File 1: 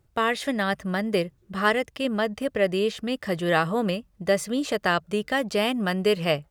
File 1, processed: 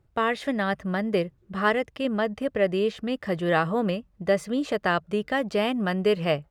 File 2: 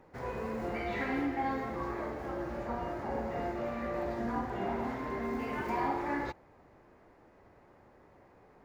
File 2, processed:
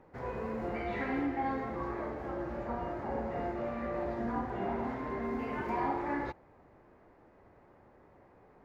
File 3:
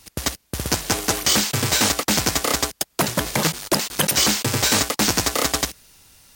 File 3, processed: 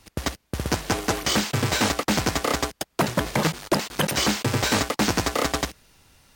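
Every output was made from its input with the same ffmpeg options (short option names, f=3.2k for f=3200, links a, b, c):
-af "highshelf=f=4.1k:g=-11.5"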